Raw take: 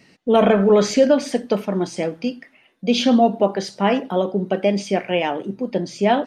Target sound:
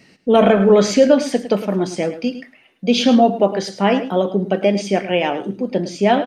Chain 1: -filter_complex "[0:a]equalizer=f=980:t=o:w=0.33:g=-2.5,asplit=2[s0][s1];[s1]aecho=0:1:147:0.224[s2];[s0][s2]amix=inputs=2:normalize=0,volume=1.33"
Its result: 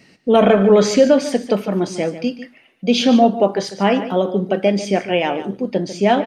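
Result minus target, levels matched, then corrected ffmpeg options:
echo 40 ms late
-filter_complex "[0:a]equalizer=f=980:t=o:w=0.33:g=-2.5,asplit=2[s0][s1];[s1]aecho=0:1:107:0.224[s2];[s0][s2]amix=inputs=2:normalize=0,volume=1.33"

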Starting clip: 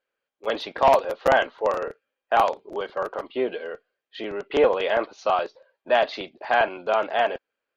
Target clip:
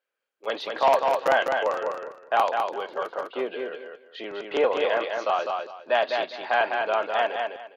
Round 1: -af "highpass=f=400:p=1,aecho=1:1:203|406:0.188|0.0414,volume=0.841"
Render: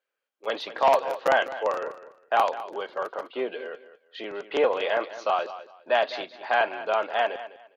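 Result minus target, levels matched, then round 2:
echo-to-direct -10 dB
-af "highpass=f=400:p=1,aecho=1:1:203|406|609:0.596|0.131|0.0288,volume=0.841"

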